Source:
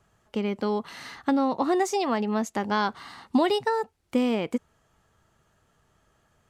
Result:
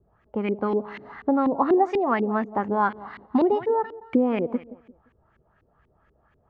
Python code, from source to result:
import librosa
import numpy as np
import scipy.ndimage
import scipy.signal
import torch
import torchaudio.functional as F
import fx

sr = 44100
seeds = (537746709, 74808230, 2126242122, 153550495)

y = fx.peak_eq(x, sr, hz=60.0, db=9.0, octaves=0.42)
y = fx.echo_feedback(y, sr, ms=173, feedback_pct=33, wet_db=-17.0)
y = fx.filter_lfo_lowpass(y, sr, shape='saw_up', hz=4.1, low_hz=320.0, high_hz=2500.0, q=2.3)